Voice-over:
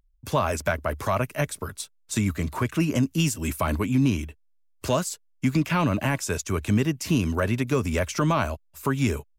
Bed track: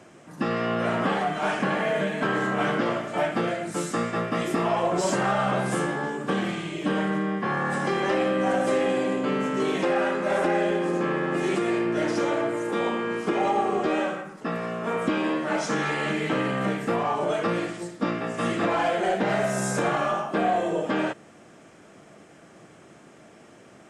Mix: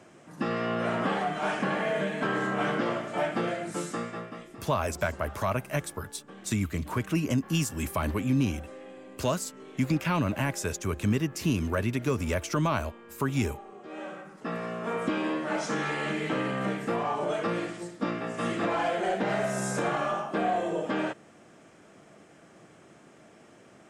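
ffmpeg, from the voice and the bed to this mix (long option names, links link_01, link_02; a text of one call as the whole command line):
ffmpeg -i stem1.wav -i stem2.wav -filter_complex "[0:a]adelay=4350,volume=-4dB[link_01];[1:a]volume=14.5dB,afade=type=out:start_time=3.7:duration=0.78:silence=0.11885,afade=type=in:start_time=13.84:duration=0.7:silence=0.125893[link_02];[link_01][link_02]amix=inputs=2:normalize=0" out.wav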